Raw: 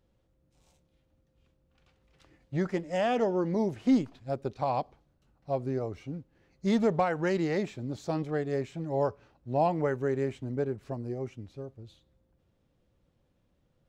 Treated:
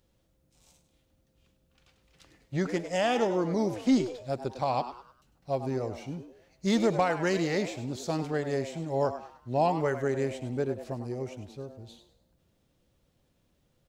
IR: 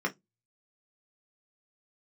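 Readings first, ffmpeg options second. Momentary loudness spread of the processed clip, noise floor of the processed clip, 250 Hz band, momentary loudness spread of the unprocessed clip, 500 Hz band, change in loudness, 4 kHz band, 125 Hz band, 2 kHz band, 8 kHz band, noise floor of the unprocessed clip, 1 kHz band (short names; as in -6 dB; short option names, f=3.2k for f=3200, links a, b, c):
14 LU, -71 dBFS, 0.0 dB, 13 LU, +0.5 dB, +0.5 dB, +6.5 dB, 0.0 dB, +3.5 dB, n/a, -72 dBFS, +1.5 dB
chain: -filter_complex "[0:a]highshelf=f=3k:g=10.5,asplit=5[a][b][c][d][e];[b]adelay=101,afreqshift=120,volume=-11.5dB[f];[c]adelay=202,afreqshift=240,volume=-20.4dB[g];[d]adelay=303,afreqshift=360,volume=-29.2dB[h];[e]adelay=404,afreqshift=480,volume=-38.1dB[i];[a][f][g][h][i]amix=inputs=5:normalize=0"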